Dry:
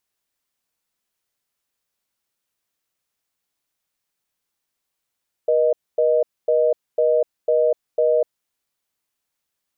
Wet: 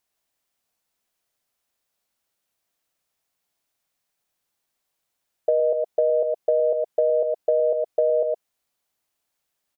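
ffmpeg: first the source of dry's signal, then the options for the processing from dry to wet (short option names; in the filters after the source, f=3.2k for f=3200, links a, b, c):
-f lavfi -i "aevalsrc='0.141*(sin(2*PI*480*t)+sin(2*PI*620*t))*clip(min(mod(t,0.5),0.25-mod(t,0.5))/0.005,0,1)':d=2.82:s=44100"
-filter_complex "[0:a]equalizer=f=690:w=2.7:g=5,asplit=2[a][b];[b]aecho=0:1:114:0.447[c];[a][c]amix=inputs=2:normalize=0,acompressor=threshold=-17dB:ratio=6"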